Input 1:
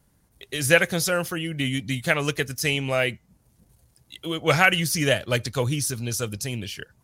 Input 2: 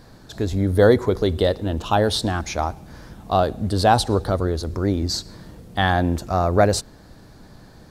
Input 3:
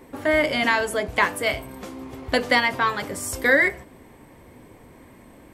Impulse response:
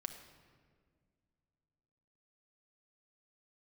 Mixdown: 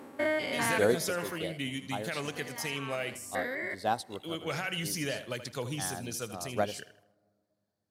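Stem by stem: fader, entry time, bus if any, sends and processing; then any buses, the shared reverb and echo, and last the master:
-9.0 dB, 0.00 s, no send, echo send -12.5 dB, limiter -15 dBFS, peak gain reduction 12 dB
-11.5 dB, 0.00 s, send -15 dB, no echo send, high shelf 6000 Hz +9 dB; upward expander 2.5:1, over -30 dBFS
0.9 s -8 dB -> 1.25 s -21 dB -> 2.74 s -21 dB -> 3.25 s -12 dB, 0.00 s, send -5.5 dB, no echo send, stepped spectrum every 0.2 s; reverb removal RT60 0.81 s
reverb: on, RT60 1.9 s, pre-delay 5 ms
echo: feedback echo 79 ms, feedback 33%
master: HPF 150 Hz 12 dB/oct

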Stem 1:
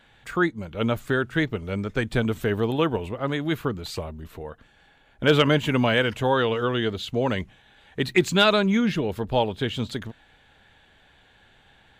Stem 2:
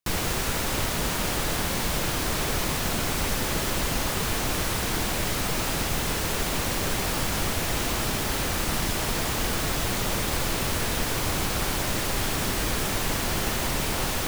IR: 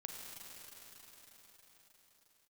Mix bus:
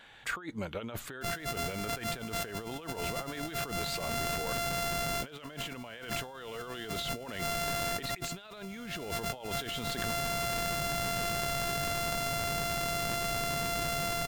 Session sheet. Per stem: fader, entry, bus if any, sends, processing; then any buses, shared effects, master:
-1.0 dB, 0.00 s, no send, dry
-8.5 dB, 1.15 s, no send, sample sorter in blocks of 64 samples; bell 150 Hz +10 dB 0.77 oct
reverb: off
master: low shelf 310 Hz -10.5 dB; negative-ratio compressor -37 dBFS, ratio -1

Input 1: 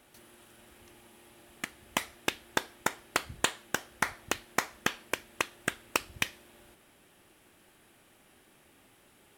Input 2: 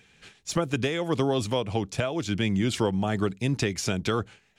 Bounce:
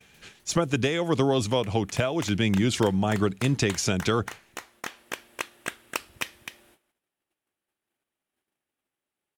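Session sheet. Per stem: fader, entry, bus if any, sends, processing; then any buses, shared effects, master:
-1.5 dB, 0.00 s, no send, echo send -7.5 dB, low shelf 190 Hz -6.5 dB; auto duck -11 dB, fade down 0.40 s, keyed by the second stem
+2.0 dB, 0.00 s, no send, no echo send, bell 6400 Hz +3 dB 0.25 oct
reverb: off
echo: echo 0.255 s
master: gate -59 dBFS, range -25 dB

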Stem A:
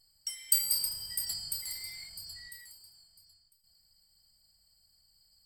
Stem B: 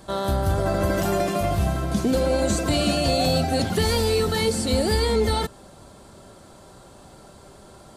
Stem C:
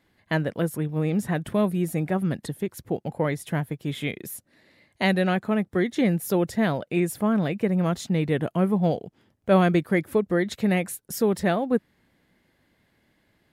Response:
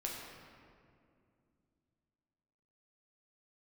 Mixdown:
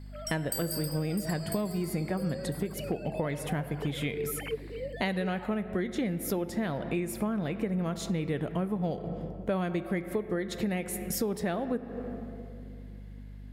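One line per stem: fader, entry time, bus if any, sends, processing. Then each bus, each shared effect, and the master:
-2.0 dB, 0.00 s, no send, dry
-16.5 dB, 0.05 s, no send, sine-wave speech
-0.5 dB, 0.00 s, send -9.5 dB, hum 50 Hz, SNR 20 dB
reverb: on, RT60 2.4 s, pre-delay 7 ms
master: compressor 6:1, threshold -28 dBFS, peak gain reduction 14.5 dB

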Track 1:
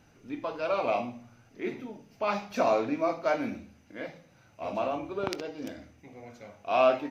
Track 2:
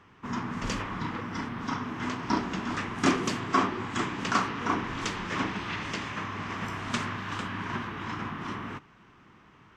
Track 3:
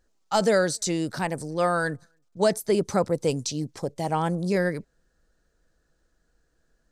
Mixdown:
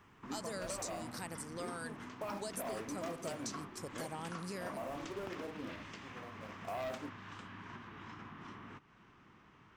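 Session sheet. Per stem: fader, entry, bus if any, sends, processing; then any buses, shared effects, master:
+2.5 dB, 0.00 s, bus A, no send, Bessel low-pass 1100 Hz, order 2; sample leveller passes 2
-6.0 dB, 0.00 s, no bus, no send, compressor 3:1, threshold -44 dBFS, peak gain reduction 18.5 dB
-1.0 dB, 0.00 s, bus A, no send, dry
bus A: 0.0 dB, pre-emphasis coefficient 0.8; compressor 4:1, threshold -41 dBFS, peak gain reduction 12.5 dB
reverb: off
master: dry

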